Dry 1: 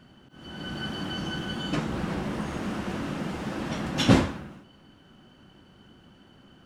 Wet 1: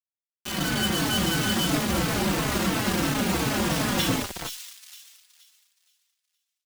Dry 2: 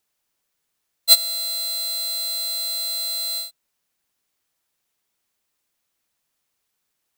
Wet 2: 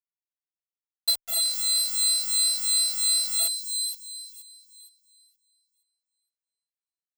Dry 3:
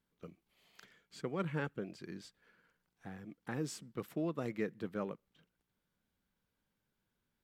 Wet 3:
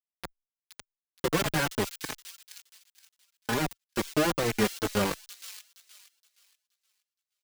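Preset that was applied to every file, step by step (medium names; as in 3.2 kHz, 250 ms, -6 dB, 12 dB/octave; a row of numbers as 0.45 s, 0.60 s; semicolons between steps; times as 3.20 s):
compression 12:1, threshold -31 dBFS; bit crusher 6-bit; saturation -22 dBFS; feedback echo behind a high-pass 471 ms, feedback 30%, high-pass 4 kHz, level -5.5 dB; endless flanger 4.1 ms -2.9 Hz; peak normalisation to -12 dBFS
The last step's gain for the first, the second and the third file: +13.0 dB, +10.5 dB, +15.0 dB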